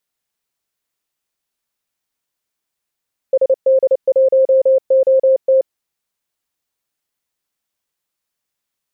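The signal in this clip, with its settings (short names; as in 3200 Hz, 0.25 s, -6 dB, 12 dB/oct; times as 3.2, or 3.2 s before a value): Morse "SD1OT" 29 wpm 529 Hz -8 dBFS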